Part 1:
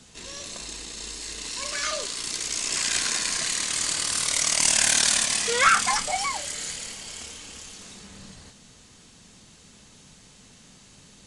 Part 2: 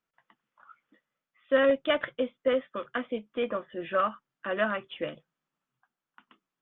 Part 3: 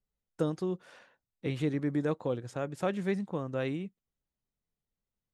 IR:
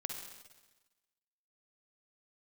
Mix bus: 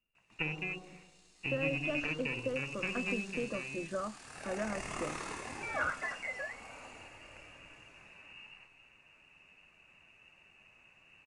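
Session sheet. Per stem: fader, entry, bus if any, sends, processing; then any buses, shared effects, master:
−4.0 dB, 0.15 s, bus A, send −21 dB, flanger 0.49 Hz, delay 6.5 ms, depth 4.8 ms, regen +61%; automatic ducking −23 dB, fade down 0.60 s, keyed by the third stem
−9.0 dB, 0.00 s, no bus, no send, spectral tilt −4 dB per octave; downward compressor, threshold −24 dBFS, peak gain reduction 10 dB
0:03.18 −2.5 dB → 0:03.50 −10 dB, 0.00 s, bus A, send −7.5 dB, windowed peak hold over 33 samples
bus A: 0.0 dB, voice inversion scrambler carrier 2,800 Hz; downward compressor 1.5 to 1, threshold −44 dBFS, peak gain reduction 8 dB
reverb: on, RT60 1.2 s, pre-delay 45 ms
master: no processing

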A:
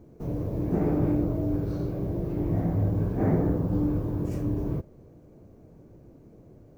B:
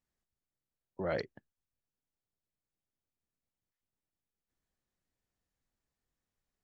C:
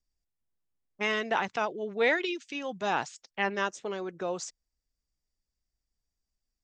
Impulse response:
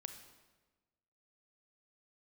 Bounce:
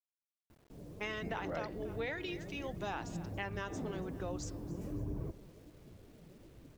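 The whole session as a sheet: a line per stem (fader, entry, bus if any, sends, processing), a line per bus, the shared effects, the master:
−10.5 dB, 0.50 s, send −14.5 dB, echo send −23.5 dB, flanger 1.3 Hz, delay 0.3 ms, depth 5.7 ms, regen +29%; automatic gain control gain up to 7.5 dB; automatic ducking −12 dB, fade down 0.55 s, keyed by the third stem
−1.0 dB, 0.45 s, no send, no echo send, no processing
−7.0 dB, 0.00 s, no send, echo send −20.5 dB, no processing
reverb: on, RT60 1.3 s, pre-delay 29 ms
echo: repeating echo 281 ms, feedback 46%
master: hum removal 238.5 Hz, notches 22; bit reduction 11 bits; downward compressor, threshold −35 dBFS, peak gain reduction 8.5 dB

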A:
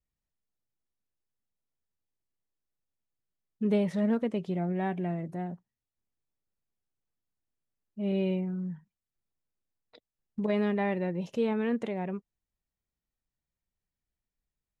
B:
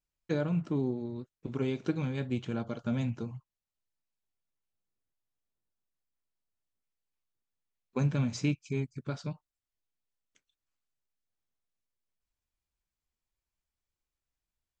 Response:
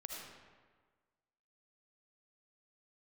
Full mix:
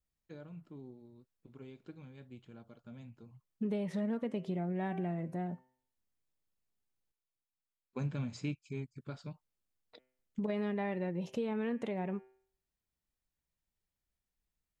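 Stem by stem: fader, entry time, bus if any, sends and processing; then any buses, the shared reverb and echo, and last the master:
−1.0 dB, 0.00 s, muted 0:07.12–0:08.97, no send, hum removal 128.1 Hz, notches 25; downward compressor 6 to 1, threshold −31 dBFS, peak gain reduction 9.5 dB
0:03.18 −19 dB → 0:03.60 −8 dB, 0.00 s, no send, notch filter 5,900 Hz, Q 5.3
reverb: not used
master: no processing

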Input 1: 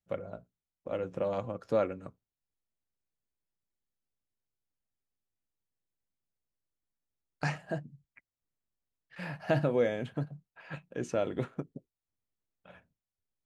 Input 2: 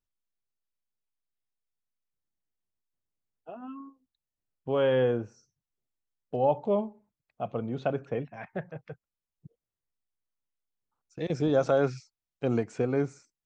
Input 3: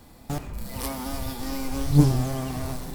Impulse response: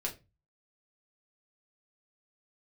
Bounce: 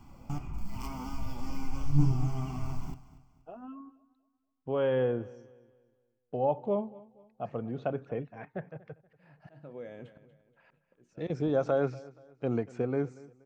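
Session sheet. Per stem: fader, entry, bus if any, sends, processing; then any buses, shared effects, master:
−6.5 dB, 0.00 s, bus A, no send, echo send −16 dB, volume swells 680 ms
−3.0 dB, 0.00 s, no bus, no send, echo send −21 dB, no processing
−2.5 dB, 0.00 s, bus A, send −10 dB, echo send −17 dB, phaser with its sweep stopped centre 2,600 Hz, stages 8; automatic ducking −9 dB, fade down 0.25 s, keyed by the second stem
bus A: 0.0 dB, downward compressor 2 to 1, threshold −40 dBFS, peak gain reduction 13.5 dB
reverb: on, RT60 0.25 s, pre-delay 5 ms
echo: repeating echo 238 ms, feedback 36%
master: high-shelf EQ 3,200 Hz −10 dB

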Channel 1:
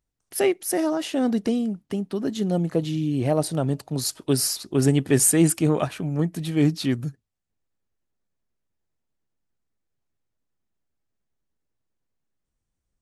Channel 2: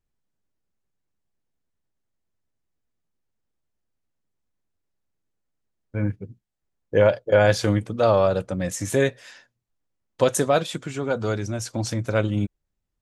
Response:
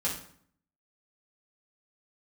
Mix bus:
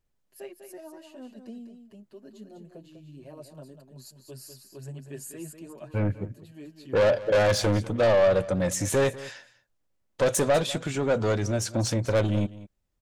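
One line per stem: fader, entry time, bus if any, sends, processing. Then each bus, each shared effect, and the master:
−20.0 dB, 0.00 s, no send, echo send −8 dB, EQ curve with evenly spaced ripples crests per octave 1.4, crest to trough 7 dB; barber-pole flanger 6.9 ms +2.1 Hz
+2.5 dB, 0.00 s, no send, echo send −18 dB, soft clipping −22.5 dBFS, distortion −6 dB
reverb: not used
echo: single-tap delay 198 ms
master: parametric band 570 Hz +4.5 dB 0.36 octaves

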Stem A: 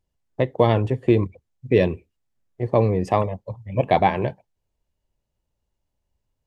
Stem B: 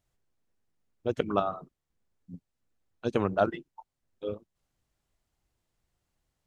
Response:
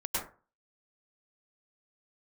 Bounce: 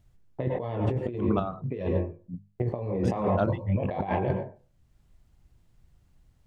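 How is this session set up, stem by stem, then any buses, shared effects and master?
+1.5 dB, 0.00 s, send −17.5 dB, noise gate with hold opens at −43 dBFS; high-shelf EQ 2,300 Hz −9.5 dB; chorus effect 0.51 Hz, delay 20 ms, depth 5.4 ms
+1.5 dB, 0.00 s, no send, bass and treble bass +14 dB, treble −3 dB; mains-hum notches 50/100/150/200 Hz; automatic ducking −11 dB, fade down 0.85 s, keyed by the first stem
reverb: on, RT60 0.35 s, pre-delay 92 ms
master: compressor whose output falls as the input rises −28 dBFS, ratio −1

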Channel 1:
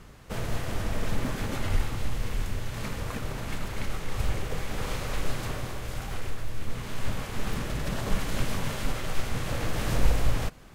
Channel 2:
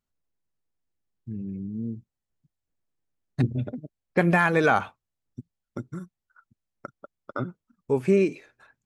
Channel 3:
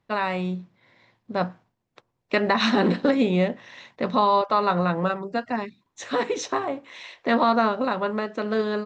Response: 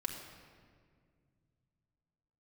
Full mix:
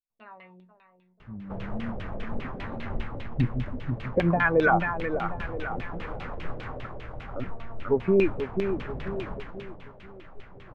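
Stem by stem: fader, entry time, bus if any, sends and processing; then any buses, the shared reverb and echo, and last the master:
0:09.15 −5.5 dB → 0:09.88 −17.5 dB, 1.20 s, no send, no echo send, wavefolder on the positive side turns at −24 dBFS
+0.5 dB, 0.00 s, no send, echo send −6.5 dB, spectral dynamics exaggerated over time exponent 1.5; brickwall limiter −15 dBFS, peak gain reduction 6.5 dB
−14.5 dB, 0.10 s, no send, echo send −11.5 dB, tuned comb filter 230 Hz, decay 0.31 s, harmonics all, mix 80%; automatic ducking −12 dB, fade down 0.25 s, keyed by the second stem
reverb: not used
echo: repeating echo 488 ms, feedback 43%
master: auto-filter low-pass saw down 5 Hz 460–3,200 Hz

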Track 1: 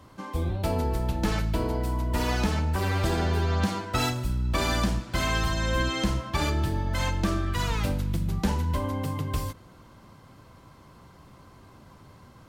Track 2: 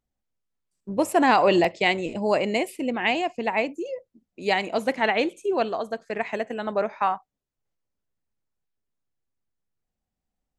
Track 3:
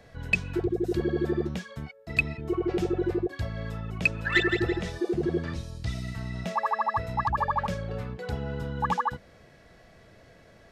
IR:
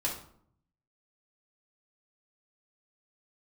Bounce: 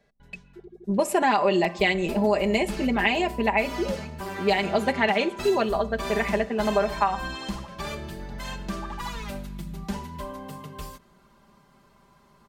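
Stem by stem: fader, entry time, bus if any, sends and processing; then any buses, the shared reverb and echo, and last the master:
−7.0 dB, 1.45 s, no send, parametric band 81 Hz −4.5 dB 2.2 octaves
+1.5 dB, 0.00 s, send −19 dB, low-pass that shuts in the quiet parts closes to 420 Hz, open at −20.5 dBFS
−13.5 dB, 0.00 s, no send, gate pattern "x.xxxxxxxx.x" 152 BPM −60 dB; automatic ducking −17 dB, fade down 1.65 s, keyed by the second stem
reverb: on, RT60 0.60 s, pre-delay 3 ms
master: comb filter 5 ms, depth 74%; downward compressor 6 to 1, threshold −18 dBFS, peak gain reduction 10 dB

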